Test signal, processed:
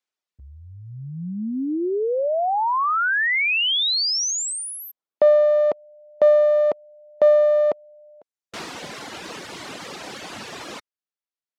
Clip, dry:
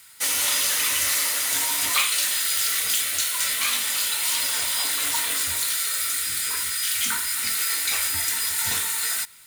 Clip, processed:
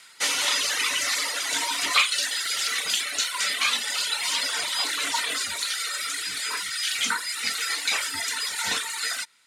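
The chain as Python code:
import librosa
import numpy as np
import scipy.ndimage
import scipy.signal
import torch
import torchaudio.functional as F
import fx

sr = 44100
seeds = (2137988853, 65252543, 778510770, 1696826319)

p1 = fx.clip_asym(x, sr, top_db=-21.0, bottom_db=-13.5)
p2 = x + (p1 * 10.0 ** (-3.0 / 20.0))
p3 = fx.dereverb_blind(p2, sr, rt60_s=1.4)
y = fx.bandpass_edges(p3, sr, low_hz=230.0, high_hz=6000.0)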